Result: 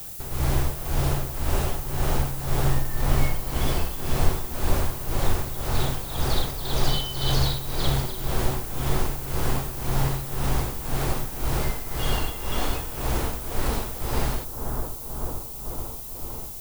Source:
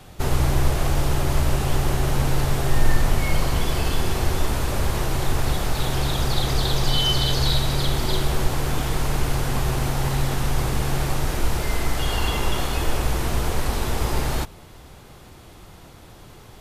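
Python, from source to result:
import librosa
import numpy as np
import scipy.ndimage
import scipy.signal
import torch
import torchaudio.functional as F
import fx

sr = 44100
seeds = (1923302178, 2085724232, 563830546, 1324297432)

y = fx.echo_bbd(x, sr, ms=441, stages=4096, feedback_pct=80, wet_db=-6.5)
y = y * (1.0 - 0.76 / 2.0 + 0.76 / 2.0 * np.cos(2.0 * np.pi * 1.9 * (np.arange(len(y)) / sr)))
y = fx.dmg_noise_colour(y, sr, seeds[0], colour='violet', level_db=-36.0)
y = F.gain(torch.from_numpy(y), -2.0).numpy()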